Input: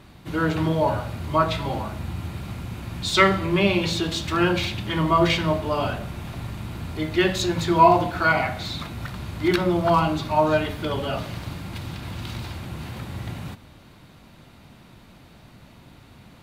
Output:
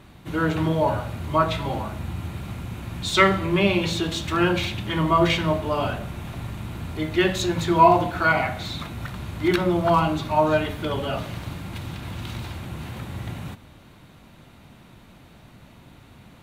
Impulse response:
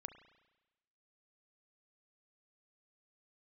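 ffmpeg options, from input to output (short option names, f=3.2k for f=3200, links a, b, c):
-af "equalizer=f=4.8k:w=4:g=-5"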